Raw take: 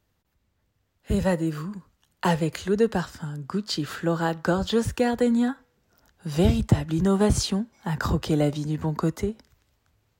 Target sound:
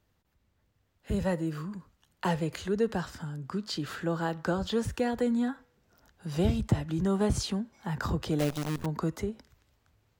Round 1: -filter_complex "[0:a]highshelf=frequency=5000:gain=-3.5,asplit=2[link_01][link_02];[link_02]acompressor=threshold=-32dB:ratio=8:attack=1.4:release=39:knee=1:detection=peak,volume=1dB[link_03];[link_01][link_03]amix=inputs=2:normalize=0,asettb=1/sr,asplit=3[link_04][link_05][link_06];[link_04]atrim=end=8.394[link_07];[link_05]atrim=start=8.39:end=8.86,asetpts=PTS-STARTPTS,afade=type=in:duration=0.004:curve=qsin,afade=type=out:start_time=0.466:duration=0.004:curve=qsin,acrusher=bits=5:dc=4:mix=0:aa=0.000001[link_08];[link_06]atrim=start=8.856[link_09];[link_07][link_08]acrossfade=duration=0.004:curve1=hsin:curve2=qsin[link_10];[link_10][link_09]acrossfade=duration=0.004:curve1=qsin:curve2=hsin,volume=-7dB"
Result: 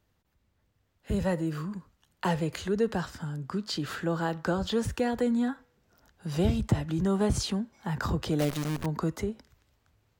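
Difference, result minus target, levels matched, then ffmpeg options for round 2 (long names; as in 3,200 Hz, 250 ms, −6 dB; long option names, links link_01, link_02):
downward compressor: peak gain reduction −7 dB
-filter_complex "[0:a]highshelf=frequency=5000:gain=-3.5,asplit=2[link_01][link_02];[link_02]acompressor=threshold=-40dB:ratio=8:attack=1.4:release=39:knee=1:detection=peak,volume=1dB[link_03];[link_01][link_03]amix=inputs=2:normalize=0,asettb=1/sr,asplit=3[link_04][link_05][link_06];[link_04]atrim=end=8.394[link_07];[link_05]atrim=start=8.39:end=8.86,asetpts=PTS-STARTPTS,afade=type=in:duration=0.004:curve=qsin,afade=type=out:start_time=0.466:duration=0.004:curve=qsin,acrusher=bits=5:dc=4:mix=0:aa=0.000001[link_08];[link_06]atrim=start=8.856[link_09];[link_07][link_08]acrossfade=duration=0.004:curve1=hsin:curve2=qsin[link_10];[link_10][link_09]acrossfade=duration=0.004:curve1=qsin:curve2=hsin,volume=-7dB"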